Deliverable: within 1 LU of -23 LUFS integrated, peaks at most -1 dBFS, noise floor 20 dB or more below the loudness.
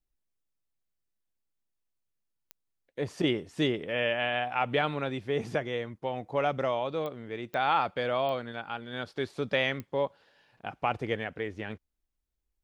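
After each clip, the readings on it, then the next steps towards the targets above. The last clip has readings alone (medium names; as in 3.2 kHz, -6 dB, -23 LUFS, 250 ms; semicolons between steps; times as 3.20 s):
clicks found 5; loudness -31.0 LUFS; peak level -13.5 dBFS; loudness target -23.0 LUFS
-> de-click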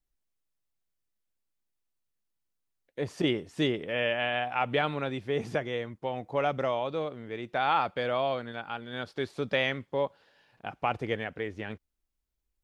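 clicks found 0; loudness -31.0 LUFS; peak level -13.5 dBFS; loudness target -23.0 LUFS
-> trim +8 dB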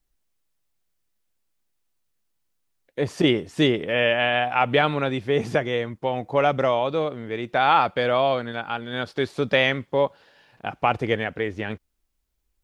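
loudness -23.0 LUFS; peak level -5.5 dBFS; noise floor -74 dBFS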